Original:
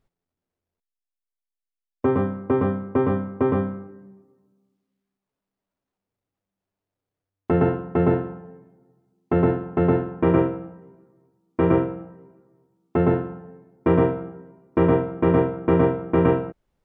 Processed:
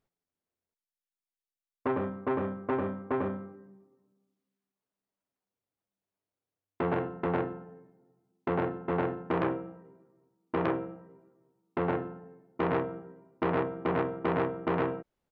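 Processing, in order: low shelf 110 Hz -11 dB; tempo 1.1×; core saturation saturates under 1400 Hz; gain -5.5 dB

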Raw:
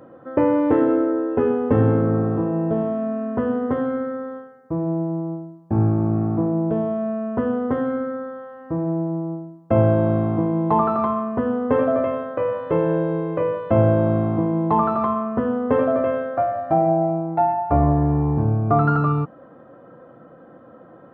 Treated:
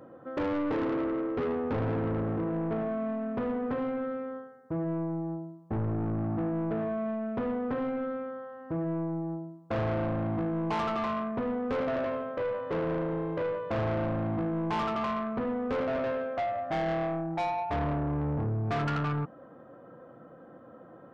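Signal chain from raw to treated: soft clip -22 dBFS, distortion -8 dB; gain -5 dB

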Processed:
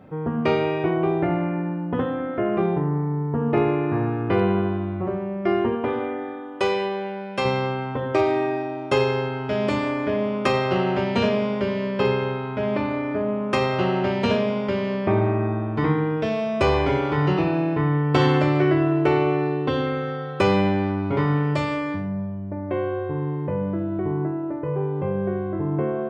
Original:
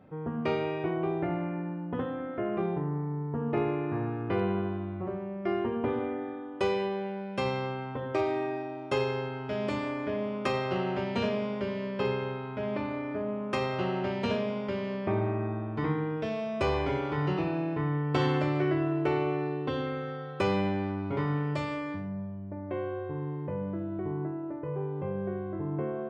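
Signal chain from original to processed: 5.75–7.45 low shelf 320 Hz -8.5 dB; gain +8.5 dB

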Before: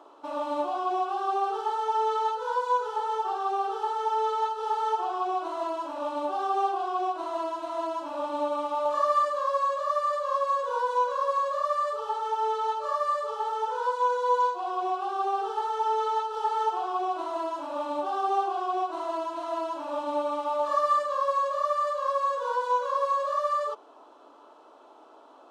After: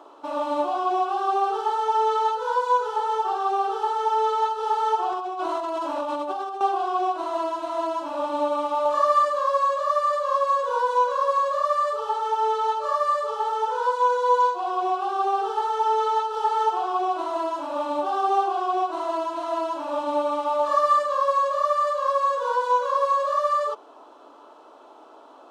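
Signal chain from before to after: 5.12–6.61 negative-ratio compressor -33 dBFS, ratio -1; gain +4.5 dB

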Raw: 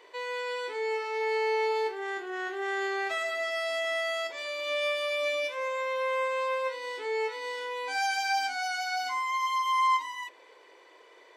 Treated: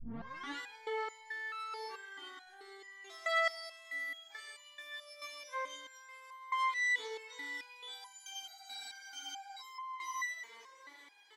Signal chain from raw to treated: tape start at the beginning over 0.57 s; bell 520 Hz -14.5 dB 1.2 oct; notch 2600 Hz, Q 10; in parallel at +1.5 dB: compressor, threshold -40 dBFS, peak gain reduction 13.5 dB; on the sum: limiter -31.5 dBFS, peak gain reduction 12 dB; echo 0.158 s -8.5 dB; shoebox room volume 880 m³, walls furnished, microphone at 0.38 m; spectral freeze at 8.47, 1.14 s; stepped resonator 4.6 Hz 230–1000 Hz; gain +12 dB

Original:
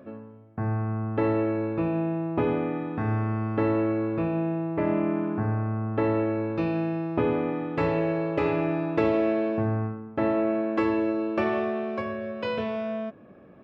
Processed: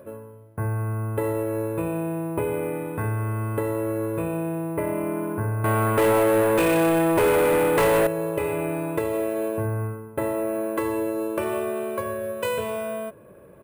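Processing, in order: comb 2 ms, depth 63%; compressor, threshold -24 dBFS, peak gain reduction 7.5 dB; 5.64–8.07 overdrive pedal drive 26 dB, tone 2400 Hz, clips at -13.5 dBFS; careless resampling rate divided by 4×, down none, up hold; gain +2 dB

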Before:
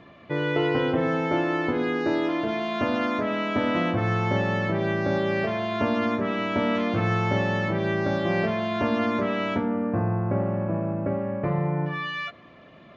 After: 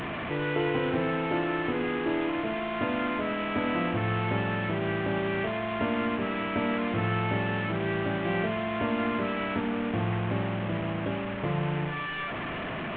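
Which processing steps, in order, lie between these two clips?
delta modulation 16 kbps, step -23.5 dBFS; notch 560 Hz, Q 12; gain -4 dB

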